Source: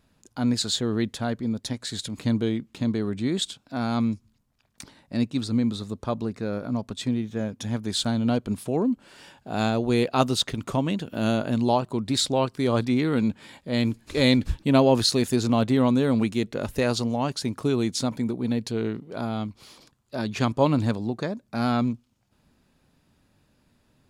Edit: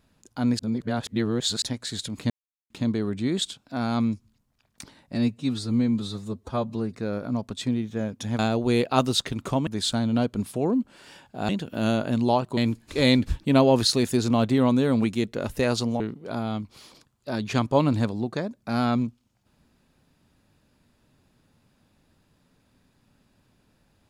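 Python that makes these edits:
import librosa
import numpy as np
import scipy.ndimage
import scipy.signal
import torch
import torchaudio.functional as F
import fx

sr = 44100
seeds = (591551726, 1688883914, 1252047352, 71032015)

y = fx.edit(x, sr, fx.reverse_span(start_s=0.59, length_s=1.03),
    fx.silence(start_s=2.3, length_s=0.4),
    fx.stretch_span(start_s=5.15, length_s=1.2, factor=1.5),
    fx.move(start_s=9.61, length_s=1.28, to_s=7.79),
    fx.cut(start_s=11.97, length_s=1.79),
    fx.cut(start_s=17.19, length_s=1.67), tone=tone)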